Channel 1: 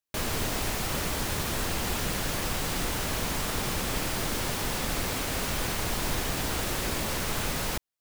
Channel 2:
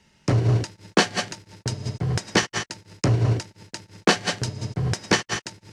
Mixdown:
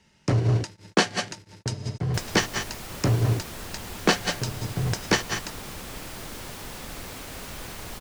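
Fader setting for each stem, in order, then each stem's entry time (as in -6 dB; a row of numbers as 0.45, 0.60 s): -8.0, -2.0 dB; 2.00, 0.00 s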